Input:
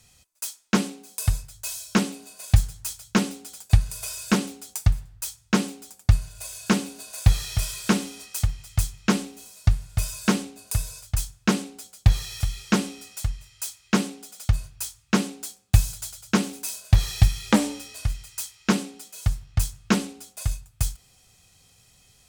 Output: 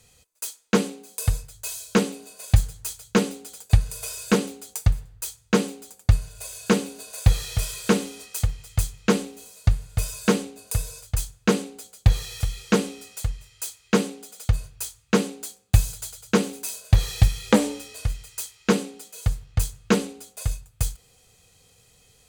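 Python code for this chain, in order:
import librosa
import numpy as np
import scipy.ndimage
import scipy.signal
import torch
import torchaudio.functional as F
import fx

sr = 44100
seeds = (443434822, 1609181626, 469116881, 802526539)

y = fx.peak_eq(x, sr, hz=470.0, db=12.0, octaves=0.3)
y = fx.notch(y, sr, hz=5400.0, q=12.0)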